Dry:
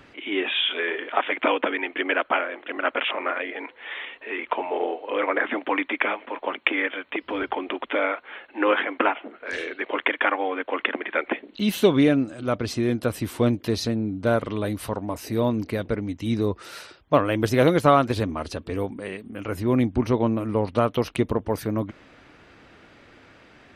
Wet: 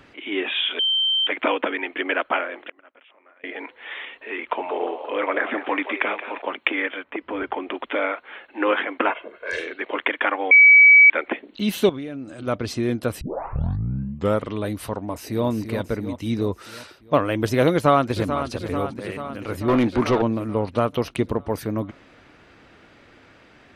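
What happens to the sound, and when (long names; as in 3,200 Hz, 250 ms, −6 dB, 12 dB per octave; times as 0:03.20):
0:00.79–0:01.27: beep over 3,120 Hz −17.5 dBFS
0:02.58–0:03.44: gate with flip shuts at −22 dBFS, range −28 dB
0:04.46–0:06.42: echo with shifted repeats 176 ms, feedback 44%, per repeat +95 Hz, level −11 dB
0:07.03–0:07.72: low-pass filter 1,700 Hz → 3,600 Hz
0:09.10–0:09.60: comb filter 1.9 ms, depth 74%
0:10.51–0:11.10: beep over 2,280 Hz −7 dBFS
0:11.89–0:12.47: downward compressor 8 to 1, threshold −29 dBFS
0:13.21: tape start 1.22 s
0:15.00–0:15.47: delay throw 340 ms, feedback 60%, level −8 dB
0:17.72–0:18.49: delay throw 440 ms, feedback 65%, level −9 dB
0:19.68–0:20.22: mid-hump overdrive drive 20 dB, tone 2,900 Hz, clips at −9.5 dBFS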